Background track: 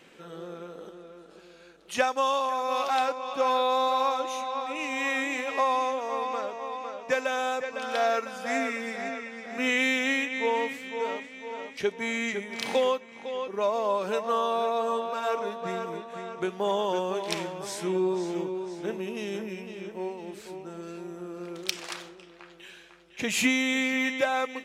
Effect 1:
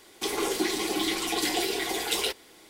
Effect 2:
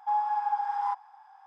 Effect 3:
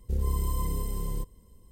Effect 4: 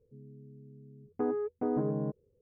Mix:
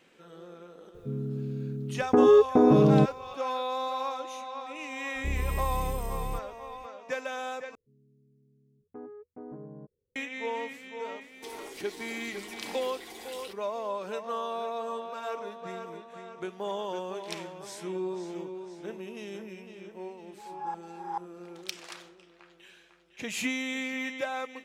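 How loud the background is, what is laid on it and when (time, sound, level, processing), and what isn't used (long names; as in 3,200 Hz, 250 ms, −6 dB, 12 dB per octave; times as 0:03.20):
background track −7 dB
0:00.94: mix in 4 −10.5 dB + boost into a limiter +28.5 dB
0:05.15: mix in 3 −3 dB
0:07.75: overwrite with 4 −13 dB
0:11.21: mix in 1 −13 dB + downward compressor, threshold −28 dBFS
0:20.31: mix in 2 −1.5 dB + tremolo with a ramp in dB swelling 2.3 Hz, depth 29 dB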